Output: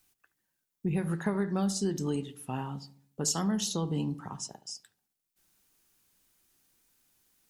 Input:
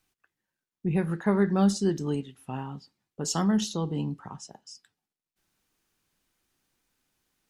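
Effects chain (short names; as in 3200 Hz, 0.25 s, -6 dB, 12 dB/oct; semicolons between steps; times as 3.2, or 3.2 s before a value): high shelf 6400 Hz +12 dB; compressor 6:1, threshold -26 dBFS, peak gain reduction 9 dB; darkening echo 72 ms, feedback 52%, low-pass 960 Hz, level -13 dB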